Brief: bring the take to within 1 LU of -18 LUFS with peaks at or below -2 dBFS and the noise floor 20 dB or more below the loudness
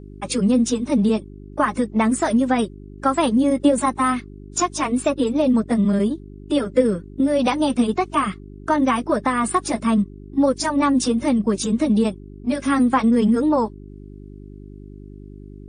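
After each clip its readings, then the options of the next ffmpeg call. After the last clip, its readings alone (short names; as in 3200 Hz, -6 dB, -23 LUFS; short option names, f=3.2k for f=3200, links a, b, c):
hum 50 Hz; harmonics up to 400 Hz; hum level -38 dBFS; loudness -20.5 LUFS; peak -5.5 dBFS; loudness target -18.0 LUFS
-> -af "bandreject=f=50:t=h:w=4,bandreject=f=100:t=h:w=4,bandreject=f=150:t=h:w=4,bandreject=f=200:t=h:w=4,bandreject=f=250:t=h:w=4,bandreject=f=300:t=h:w=4,bandreject=f=350:t=h:w=4,bandreject=f=400:t=h:w=4"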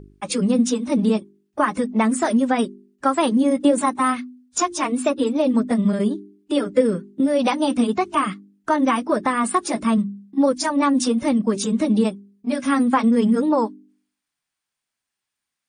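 hum none; loudness -20.5 LUFS; peak -5.5 dBFS; loudness target -18.0 LUFS
-> -af "volume=2.5dB"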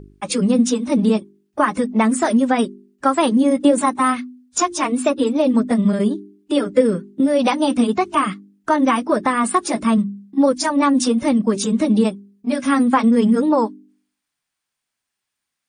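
loudness -18.0 LUFS; peak -3.0 dBFS; noise floor -81 dBFS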